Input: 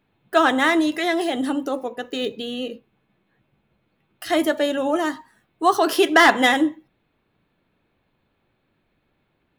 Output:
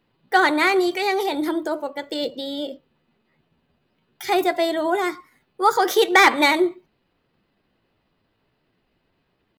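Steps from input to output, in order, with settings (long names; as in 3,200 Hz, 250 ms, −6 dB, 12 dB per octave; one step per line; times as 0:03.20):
pitch shifter +2.5 semitones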